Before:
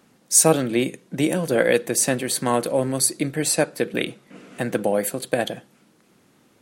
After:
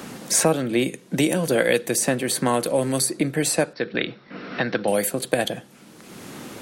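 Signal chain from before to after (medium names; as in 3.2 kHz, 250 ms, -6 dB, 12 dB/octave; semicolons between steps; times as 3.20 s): 3.73–4.88 s: rippled Chebyshev low-pass 5.6 kHz, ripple 6 dB; three bands compressed up and down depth 70%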